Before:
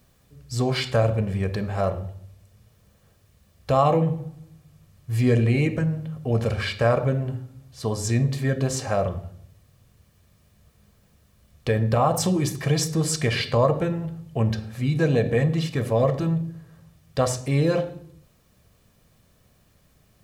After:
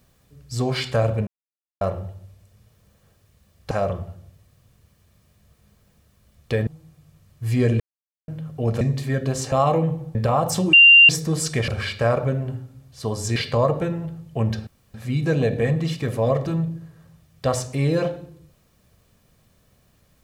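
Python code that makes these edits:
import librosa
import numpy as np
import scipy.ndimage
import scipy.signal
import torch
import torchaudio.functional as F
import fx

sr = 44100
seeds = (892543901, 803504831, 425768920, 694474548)

y = fx.edit(x, sr, fx.silence(start_s=1.27, length_s=0.54),
    fx.swap(start_s=3.71, length_s=0.63, other_s=8.87, other_length_s=2.96),
    fx.silence(start_s=5.47, length_s=0.48),
    fx.move(start_s=6.48, length_s=1.68, to_s=13.36),
    fx.bleep(start_s=12.41, length_s=0.36, hz=2780.0, db=-6.5),
    fx.insert_room_tone(at_s=14.67, length_s=0.27), tone=tone)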